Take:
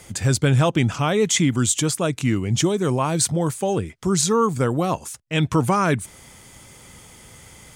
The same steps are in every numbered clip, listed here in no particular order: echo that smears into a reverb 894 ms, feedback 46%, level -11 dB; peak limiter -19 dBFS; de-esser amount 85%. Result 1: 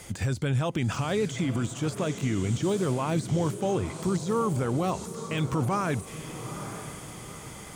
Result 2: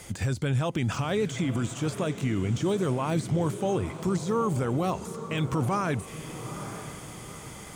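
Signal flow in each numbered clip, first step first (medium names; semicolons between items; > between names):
peak limiter > echo that smears into a reverb > de-esser; peak limiter > de-esser > echo that smears into a reverb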